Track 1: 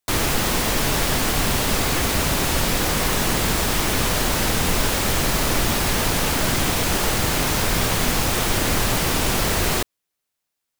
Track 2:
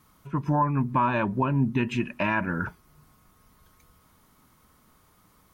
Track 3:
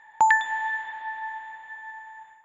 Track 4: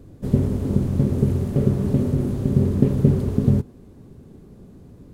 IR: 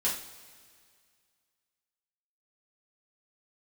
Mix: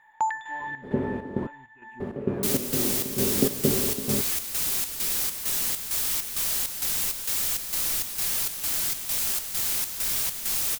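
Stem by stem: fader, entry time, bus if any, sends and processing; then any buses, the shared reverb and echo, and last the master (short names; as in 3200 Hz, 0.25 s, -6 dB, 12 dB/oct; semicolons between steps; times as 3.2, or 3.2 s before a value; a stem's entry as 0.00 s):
-2.0 dB, 2.35 s, no send, pre-emphasis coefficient 0.9
-18.0 dB, 0.00 s, no send, bell 4100 Hz -12 dB 1.1 oct; photocell phaser 0.76 Hz
-6.0 dB, 0.00 s, no send, dry
+0.5 dB, 0.60 s, muted 1.47–2, no send, three-band isolator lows -18 dB, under 260 Hz, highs -23 dB, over 2900 Hz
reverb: off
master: chopper 2.2 Hz, depth 60%, duty 65%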